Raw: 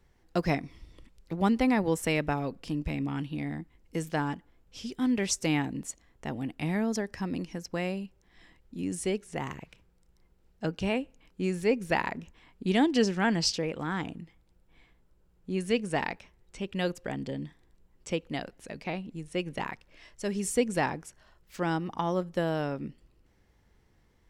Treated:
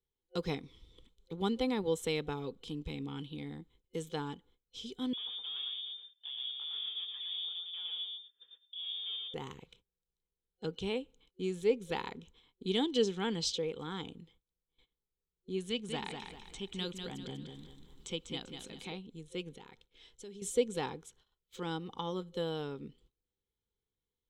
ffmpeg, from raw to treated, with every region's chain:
ffmpeg -i in.wav -filter_complex "[0:a]asettb=1/sr,asplit=3[link_01][link_02][link_03];[link_01]atrim=end=5.134[link_04];[link_02]atrim=start=5.13:end=9.34,asetpts=PTS-STARTPTS,afade=type=in:duration=0.004:curve=qsin,afade=type=out:start_time=4.206:duration=0.004:curve=qsin,aeval=exprs='(tanh(141*val(0)+0.55)-tanh(0.55))/141':channel_layout=same,aecho=1:1:114|228|342:0.708|0.113|0.0181,atrim=end_sample=185661,lowpass=frequency=3100:width_type=q:width=0.5098,lowpass=frequency=3100:width_type=q:width=0.6013,lowpass=frequency=3100:width_type=q:width=0.9,lowpass=frequency=3100:width_type=q:width=2.563,afreqshift=-3600[link_05];[link_03]atrim=start=9.336[link_06];[link_04][link_05]acrossfade=duration=0.004:curve1=hsin:curve2=qsin[link_07];[link_07][link_06]acrossfade=duration=0.004:curve1=qsin:curve2=hsin,asettb=1/sr,asplit=3[link_08][link_09][link_10];[link_08]atrim=end=15.694[link_11];[link_09]atrim=start=15.69:end=18.92,asetpts=PTS-STARTPTS,afade=type=in:duration=0.004:curve=qsin,afade=type=out:start_time=3.226:duration=0.004:curve=qsin,equalizer=frequency=460:width_type=o:width=0.3:gain=-11,acompressor=mode=upward:threshold=-34dB:ratio=2.5:attack=3.2:release=140:knee=2.83:detection=peak,aecho=1:1:196|392|588|784:0.501|0.185|0.0686|0.0254,atrim=end_sample=142443[link_12];[link_10]atrim=start=18.916[link_13];[link_11][link_12]acrossfade=duration=0.004:curve1=hsin:curve2=qsin[link_14];[link_14][link_13]acrossfade=duration=0.004:curve1=qsin:curve2=hsin,asettb=1/sr,asplit=3[link_15][link_16][link_17];[link_15]atrim=end=19.564[link_18];[link_16]atrim=start=19.56:end=20.42,asetpts=PTS-STARTPTS,afade=type=in:duration=0.004:curve=qsin,afade=type=out:start_time=0.856:duration=0.004:curve=qsin,bandreject=frequency=1100:width=6,acompressor=threshold=-41dB:ratio=4:attack=3.2:release=140:knee=1:detection=peak[link_19];[link_17]atrim=start=20.416[link_20];[link_18][link_19]acrossfade=duration=0.004:curve1=hsin:curve2=qsin[link_21];[link_21][link_20]acrossfade=duration=0.004:curve1=qsin:curve2=hsin,agate=range=-19dB:threshold=-56dB:ratio=16:detection=peak,superequalizer=7b=2.24:8b=0.355:11b=0.562:13b=3.98:15b=1.58,volume=-9dB" out.wav

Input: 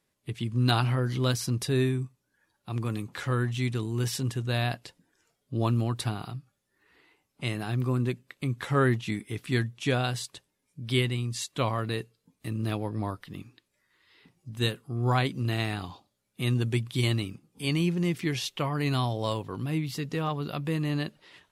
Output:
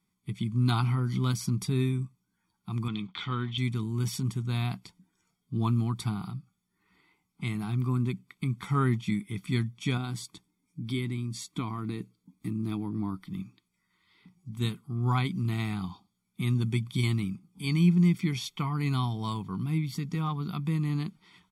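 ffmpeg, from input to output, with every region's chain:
ffmpeg -i in.wav -filter_complex "[0:a]asettb=1/sr,asplit=3[link_01][link_02][link_03];[link_01]atrim=end=2.884[link_04];[link_02]atrim=start=2.88:end=3.58,asetpts=PTS-STARTPTS,afade=type=in:duration=0.004:curve=qsin,afade=type=out:start_time=0.696:duration=0.004:curve=qsin,equalizer=frequency=66:width_type=o:width=1.8:gain=-9.5,aeval=exprs='sgn(val(0))*max(abs(val(0))-0.00106,0)':channel_layout=same,lowpass=frequency=3400:width_type=q:width=4.6[link_05];[link_03]atrim=start=3.576[link_06];[link_04][link_05]acrossfade=duration=0.004:curve1=hsin:curve2=qsin[link_07];[link_07][link_06]acrossfade=duration=0.004:curve1=qsin:curve2=hsin,asettb=1/sr,asplit=3[link_08][link_09][link_10];[link_08]atrim=end=9.974[link_11];[link_09]atrim=start=9.97:end=13.3,asetpts=PTS-STARTPTS,afade=type=in:duration=0.004:curve=qsin,afade=type=out:start_time=3.326:duration=0.004:curve=qsin,bandreject=frequency=2900:width=12,acompressor=threshold=-32dB:ratio=2:attack=3.2:release=140:knee=1:detection=peak,equalizer=frequency=300:width_type=o:width=0.56:gain=10[link_12];[link_10]atrim=start=13.296[link_13];[link_11][link_12]acrossfade=duration=0.004:curve1=hsin:curve2=qsin[link_14];[link_14][link_13]acrossfade=duration=0.004:curve1=qsin:curve2=hsin,equalizer=frequency=190:width_type=o:width=0.33:gain=13.5,aecho=1:1:0.9:0.91,volume=-6.5dB" out.wav

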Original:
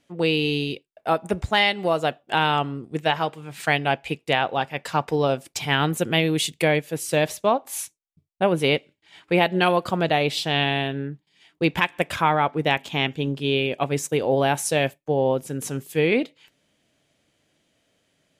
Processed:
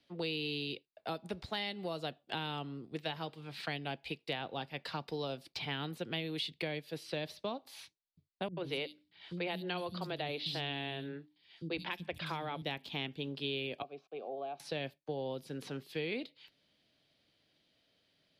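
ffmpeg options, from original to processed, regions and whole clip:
ffmpeg -i in.wav -filter_complex "[0:a]asettb=1/sr,asplit=3[link_01][link_02][link_03];[link_01]atrim=end=8.484[link_04];[link_02]atrim=start=8.48:end=12.62,asetpts=PTS-STARTPTS,afade=type=in:duration=0.004:curve=qsin,afade=type=out:start_time=4.136:duration=0.004:curve=qsin,bandreject=frequency=50:width_type=h:width=6,bandreject=frequency=100:width_type=h:width=6,bandreject=frequency=150:width_type=h:width=6,bandreject=frequency=200:width_type=h:width=6,bandreject=frequency=250:width_type=h:width=6,bandreject=frequency=300:width_type=h:width=6,acrossover=split=240|4700[link_05][link_06][link_07];[link_06]adelay=90[link_08];[link_07]adelay=160[link_09];[link_05][link_08][link_09]amix=inputs=3:normalize=0,atrim=end_sample=182574[link_10];[link_03]atrim=start=12.616[link_11];[link_04][link_10]acrossfade=duration=0.004:curve1=hsin:curve2=qsin[link_12];[link_12][link_11]acrossfade=duration=0.004:curve1=qsin:curve2=hsin,asettb=1/sr,asplit=3[link_13][link_14][link_15];[link_13]atrim=end=13.824[link_16];[link_14]atrim=start=13.82:end=14.6,asetpts=PTS-STARTPTS,afade=type=in:duration=0.004:curve=qsin,afade=type=out:start_time=0.776:duration=0.004:curve=qsin,highpass=frequency=140:width=0.5412,highpass=frequency=140:width=1.3066,equalizer=frequency=150:width_type=q:width=4:gain=4,equalizer=frequency=230:width_type=q:width=4:gain=10,equalizer=frequency=390:width_type=q:width=4:gain=8,equalizer=frequency=1000:width_type=q:width=4:gain=-3,equalizer=frequency=2800:width_type=q:width=4:gain=-8,equalizer=frequency=4700:width_type=q:width=4:gain=-5,lowpass=frequency=5300:width=0.5412,lowpass=frequency=5300:width=1.3066,aeval=exprs='val(0)*gte(abs(val(0)),0.00794)':channel_layout=same,asplit=3[link_17][link_18][link_19];[link_17]bandpass=frequency=730:width_type=q:width=8,volume=0dB[link_20];[link_18]bandpass=frequency=1090:width_type=q:width=8,volume=-6dB[link_21];[link_19]bandpass=frequency=2440:width_type=q:width=8,volume=-9dB[link_22];[link_20][link_21][link_22]amix=inputs=3:normalize=0[link_23];[link_15]atrim=start=14.596[link_24];[link_16][link_23]acrossfade=duration=0.004:curve1=hsin:curve2=qsin[link_25];[link_25][link_24]acrossfade=duration=0.004:curve1=qsin:curve2=hsin,bass=frequency=250:gain=0,treble=frequency=4000:gain=6,acrossover=split=160|380|3500|7600[link_26][link_27][link_28][link_29][link_30];[link_26]acompressor=threshold=-45dB:ratio=4[link_31];[link_27]acompressor=threshold=-35dB:ratio=4[link_32];[link_28]acompressor=threshold=-33dB:ratio=4[link_33];[link_29]acompressor=threshold=-44dB:ratio=4[link_34];[link_30]acompressor=threshold=-46dB:ratio=4[link_35];[link_31][link_32][link_33][link_34][link_35]amix=inputs=5:normalize=0,highshelf=frequency=5600:width_type=q:width=3:gain=-9,volume=-8.5dB" out.wav

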